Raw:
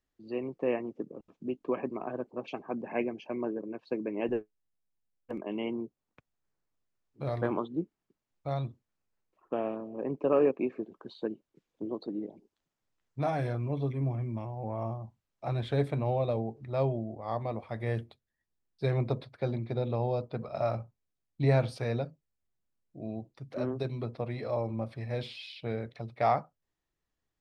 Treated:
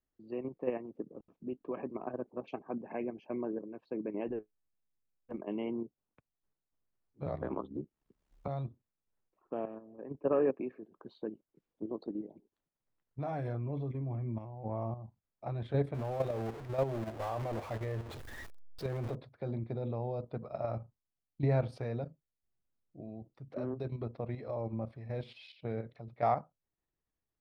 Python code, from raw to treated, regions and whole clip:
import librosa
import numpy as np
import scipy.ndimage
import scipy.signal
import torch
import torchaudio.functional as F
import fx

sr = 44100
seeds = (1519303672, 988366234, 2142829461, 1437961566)

y = fx.chain(x, sr, fx.ring_mod(carrier_hz=34.0),
    fx.band_squash(depth_pct=100), at=(7.26, 8.48))
y = fx.chain(y, sr, fx.peak_eq(hz=1700.0, db=7.5, octaves=0.31),
    fx.band_widen(depth_pct=70), at=(9.65, 10.94))
y = fx.chain(y, sr, fx.zero_step(step_db=-31.5),
    fx.peak_eq(hz=180.0, db=-9.5, octaves=0.84), at=(15.94, 19.15))
y = fx.high_shelf(y, sr, hz=2400.0, db=-12.0)
y = fx.level_steps(y, sr, step_db=9)